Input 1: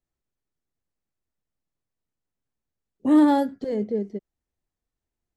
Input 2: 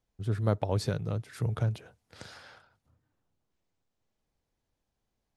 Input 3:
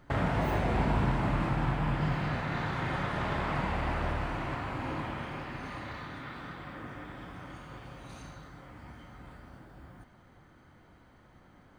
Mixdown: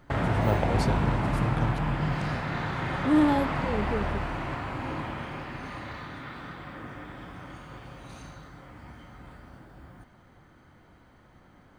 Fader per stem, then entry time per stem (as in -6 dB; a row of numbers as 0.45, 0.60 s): -5.0, 0.0, +2.0 dB; 0.00, 0.00, 0.00 s